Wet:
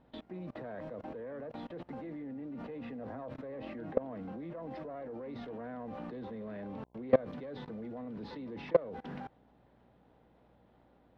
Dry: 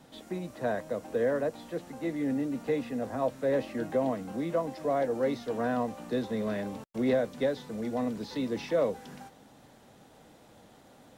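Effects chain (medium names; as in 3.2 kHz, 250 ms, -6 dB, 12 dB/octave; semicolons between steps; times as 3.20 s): self-modulated delay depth 0.11 ms; level held to a coarse grid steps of 24 dB; mains buzz 60 Hz, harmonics 17, -76 dBFS -3 dB/octave; distance through air 370 m; trim +6.5 dB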